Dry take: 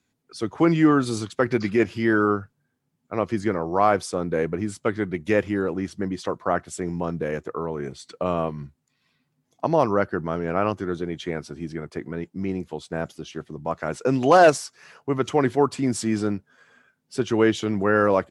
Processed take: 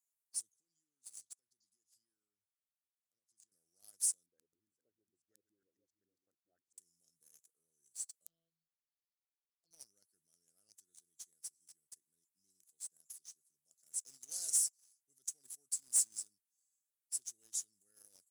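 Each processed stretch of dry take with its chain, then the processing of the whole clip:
0.52–3.52 s: low-pass 3.2 kHz 6 dB/octave + compression 4:1, threshold -34 dBFS
4.26–6.78 s: delay 455 ms -7.5 dB + LFO low-pass saw up 7.3 Hz 210–1700 Hz + peaking EQ 170 Hz -8 dB 1.2 oct
8.26–9.71 s: brick-wall FIR low-pass 5.3 kHz + robot voice 165 Hz + touch-sensitive flanger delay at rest 6.3 ms, full sweep at -21.5 dBFS
whole clip: inverse Chebyshev high-pass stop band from 2.6 kHz, stop band 60 dB; waveshaping leveller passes 2; trim +2 dB

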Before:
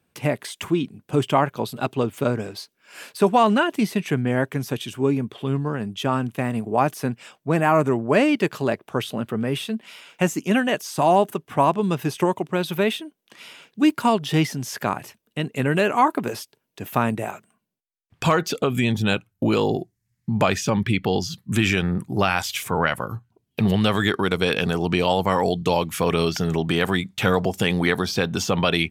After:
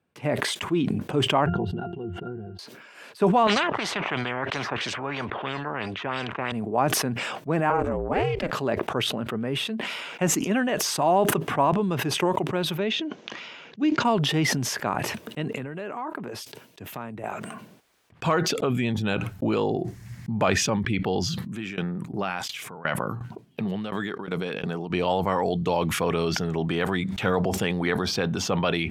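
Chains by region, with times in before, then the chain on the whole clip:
1.46–2.59 s: bass shelf 250 Hz +8.5 dB + pitch-class resonator F, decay 0.11 s
3.47–6.52 s: high-pass 74 Hz + LFO low-pass sine 3 Hz 850–4900 Hz + spectrum-flattening compressor 4:1
7.70–8.53 s: high-pass 190 Hz + treble shelf 7.1 kHz -5.5 dB + ring modulator 170 Hz
12.79–14.05 s: elliptic low-pass 6.6 kHz, stop band 50 dB + dynamic bell 1.1 kHz, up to -6 dB, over -39 dBFS, Q 0.89
15.56–17.24 s: compression 8:1, threshold -26 dBFS + three bands expanded up and down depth 70%
21.42–24.90 s: resonant low shelf 110 Hz -8.5 dB, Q 1.5 + sawtooth tremolo in dB decaying 2.8 Hz, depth 22 dB
whole clip: high-pass 1.2 kHz 6 dB/octave; tilt EQ -4.5 dB/octave; decay stretcher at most 27 dB/s

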